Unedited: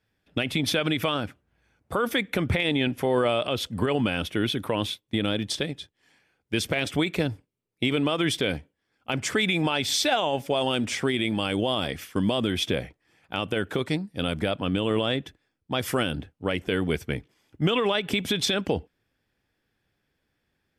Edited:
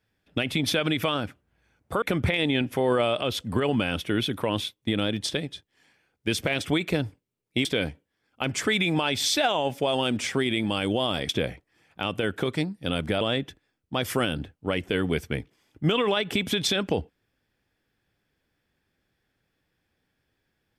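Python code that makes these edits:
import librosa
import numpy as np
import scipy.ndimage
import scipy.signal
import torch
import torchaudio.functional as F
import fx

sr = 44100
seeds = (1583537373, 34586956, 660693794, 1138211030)

y = fx.edit(x, sr, fx.cut(start_s=2.02, length_s=0.26),
    fx.cut(start_s=7.91, length_s=0.42),
    fx.cut(start_s=11.97, length_s=0.65),
    fx.cut(start_s=14.54, length_s=0.45), tone=tone)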